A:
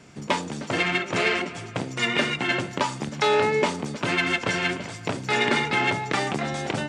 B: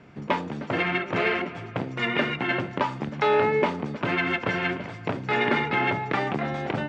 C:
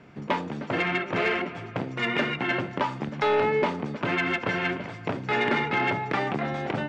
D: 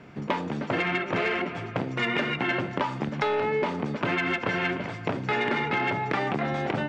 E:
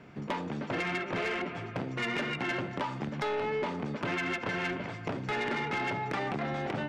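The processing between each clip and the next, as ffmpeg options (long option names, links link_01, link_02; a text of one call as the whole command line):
ffmpeg -i in.wav -af "lowpass=2400" out.wav
ffmpeg -i in.wav -af "asoftclip=type=tanh:threshold=-14.5dB,equalizer=frequency=65:width=0.9:gain=-3" out.wav
ffmpeg -i in.wav -af "acompressor=threshold=-26dB:ratio=6,volume=3dB" out.wav
ffmpeg -i in.wav -af "asoftclip=type=tanh:threshold=-21.5dB,volume=-4dB" out.wav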